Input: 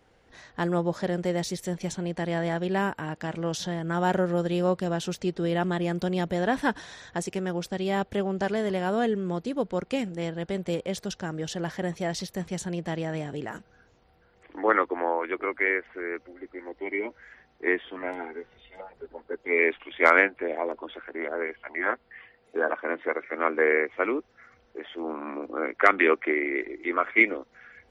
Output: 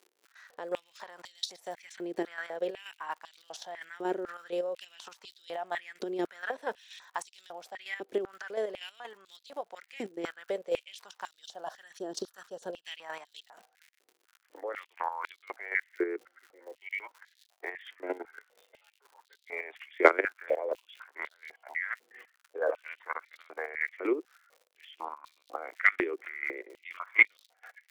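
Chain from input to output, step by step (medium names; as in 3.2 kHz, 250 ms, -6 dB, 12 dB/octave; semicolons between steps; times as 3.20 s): expander -49 dBFS; level held to a coarse grid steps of 17 dB; 11.42–12.86 s: Butterworth band-stop 2.2 kHz, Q 1.7; crackle 120 per s -45 dBFS; square tremolo 4.2 Hz, depth 60%, duty 35%; step-sequenced high-pass 4 Hz 370–3800 Hz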